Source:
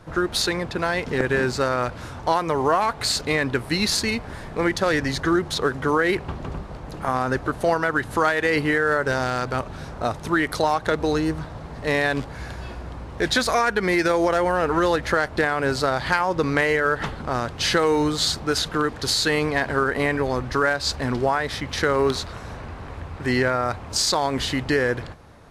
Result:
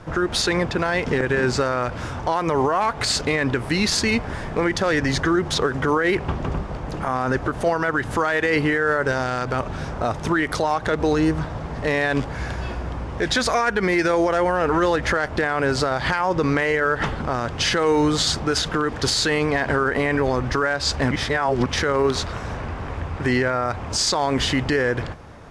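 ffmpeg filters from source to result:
-filter_complex "[0:a]asplit=3[s0][s1][s2];[s0]atrim=end=21.112[s3];[s1]atrim=start=21.108:end=21.662,asetpts=PTS-STARTPTS,areverse[s4];[s2]atrim=start=21.658[s5];[s3][s4]acrossfade=d=0.004:c1=hsin:c2=hsin[s6];[s6][s5]acrossfade=d=0.004:c1=hsin:c2=hsin,lowpass=7800,equalizer=f=4100:w=5.6:g=-6,alimiter=limit=0.141:level=0:latency=1:release=81,volume=2"

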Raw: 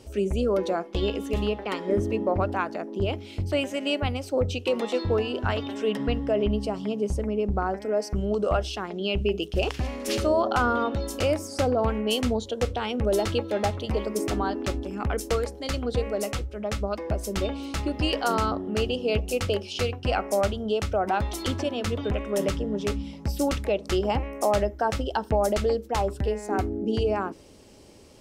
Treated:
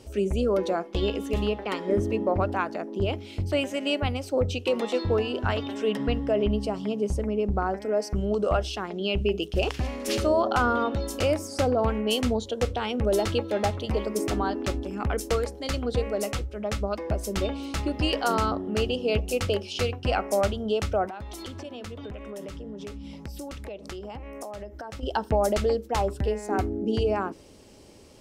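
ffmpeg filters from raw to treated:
-filter_complex "[0:a]asettb=1/sr,asplit=3[s0][s1][s2];[s0]atrim=end=21.064[s3];[s1]atrim=start=21.06:end=25.03,asetpts=PTS-STARTPTS,afade=t=in:d=0.004:c=qsin,afade=t=out:st=3.966:d=0.004:c=qsin,acompressor=threshold=0.0178:ratio=6:attack=3.2:release=140:knee=1:detection=peak[s4];[s2]atrim=start=25.026[s5];[s3][s4]acrossfade=d=0.004:c1=hsin:c2=qsin[s6];[s6][s5]acrossfade=d=0.004:c1=qsin:c2=hsin"

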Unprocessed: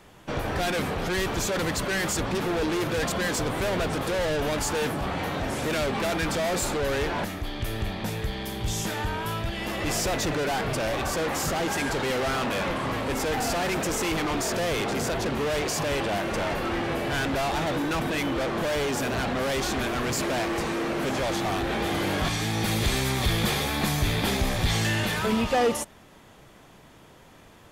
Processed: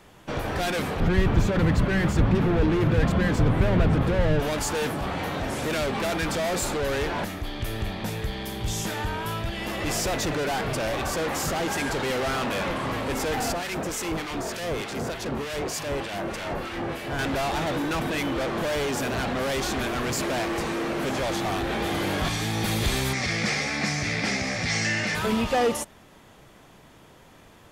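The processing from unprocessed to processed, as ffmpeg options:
-filter_complex "[0:a]asettb=1/sr,asplit=3[s0][s1][s2];[s0]atrim=end=1.004[s3];[s1]atrim=start=1:end=4.4,asetpts=PTS-STARTPTS,afade=t=in:d=0.004:c=qsin,afade=t=out:st=3.396:d=0.004:c=qsin,bass=f=250:g=13,treble=f=4000:g=-13[s4];[s2]atrim=start=4.396[s5];[s3][s4]acrossfade=d=0.004:c1=hsin:c2=qsin[s6];[s6][s5]acrossfade=d=0.004:c1=qsin:c2=hsin,asettb=1/sr,asplit=3[s7][s8][s9];[s7]atrim=end=13.524[s10];[s8]atrim=start=13.52:end=17.19,asetpts=PTS-STARTPTS,afade=t=in:d=0.004:c=qsin,afade=t=out:st=3.666:d=0.004:c=qsin,acrossover=split=1500[s11][s12];[s11]aeval=exprs='val(0)*(1-0.7/2+0.7/2*cos(2*PI*3.3*n/s))':c=same[s13];[s12]aeval=exprs='val(0)*(1-0.7/2-0.7/2*cos(2*PI*3.3*n/s))':c=same[s14];[s13][s14]amix=inputs=2:normalize=0[s15];[s9]atrim=start=17.186[s16];[s10][s15]acrossfade=d=0.004:c1=hsin:c2=qsin[s17];[s17][s16]acrossfade=d=0.004:c1=qsin:c2=hsin,asettb=1/sr,asplit=3[s18][s19][s20];[s18]atrim=end=23.134[s21];[s19]atrim=start=23.13:end=25.15,asetpts=PTS-STARTPTS,afade=t=in:d=0.004:c=qsin,afade=t=out:st=2.016:d=0.004:c=qsin,highpass=140,equalizer=f=380:t=q:w=4:g=-7,equalizer=f=970:t=q:w=4:g=-8,equalizer=f=2100:t=q:w=4:g=9,equalizer=f=3400:t=q:w=4:g=-9,equalizer=f=5400:t=q:w=4:g=9,lowpass=f=7700:w=0.5412,lowpass=f=7700:w=1.3066[s22];[s20]atrim=start=25.146[s23];[s21][s22]acrossfade=d=0.004:c1=hsin:c2=qsin[s24];[s24][s23]acrossfade=d=0.004:c1=qsin:c2=hsin"

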